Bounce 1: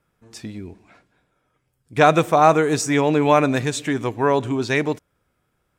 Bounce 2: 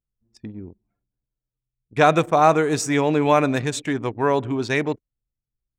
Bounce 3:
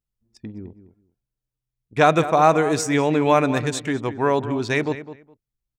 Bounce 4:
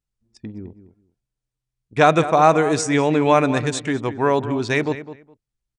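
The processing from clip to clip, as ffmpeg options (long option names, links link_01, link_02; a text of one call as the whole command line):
ffmpeg -i in.wav -af "anlmdn=10,volume=-1.5dB" out.wav
ffmpeg -i in.wav -filter_complex "[0:a]asplit=2[link_01][link_02];[link_02]adelay=207,lowpass=frequency=2800:poles=1,volume=-13dB,asplit=2[link_03][link_04];[link_04]adelay=207,lowpass=frequency=2800:poles=1,volume=0.18[link_05];[link_01][link_03][link_05]amix=inputs=3:normalize=0" out.wav
ffmpeg -i in.wav -af "aresample=22050,aresample=44100,volume=1.5dB" out.wav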